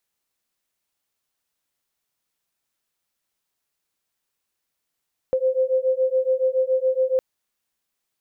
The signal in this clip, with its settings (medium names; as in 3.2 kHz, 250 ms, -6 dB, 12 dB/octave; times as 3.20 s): beating tones 516 Hz, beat 7.1 Hz, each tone -21 dBFS 1.86 s